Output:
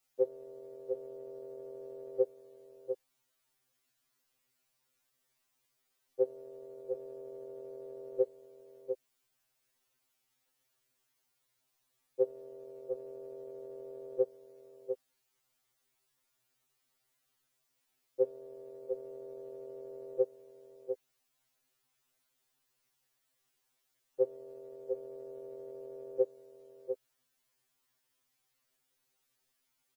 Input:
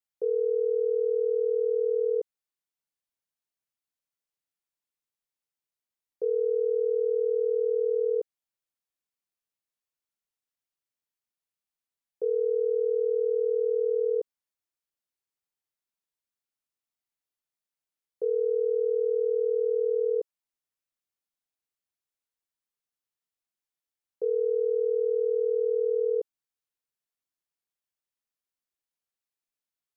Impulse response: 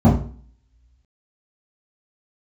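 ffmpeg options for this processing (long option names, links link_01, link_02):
-filter_complex "[0:a]asplit=2[link_01][link_02];[link_02]adelay=699.7,volume=-7dB,highshelf=frequency=4000:gain=-15.7[link_03];[link_01][link_03]amix=inputs=2:normalize=0,afftfilt=real='re*2.45*eq(mod(b,6),0)':imag='im*2.45*eq(mod(b,6),0)':win_size=2048:overlap=0.75,volume=14.5dB"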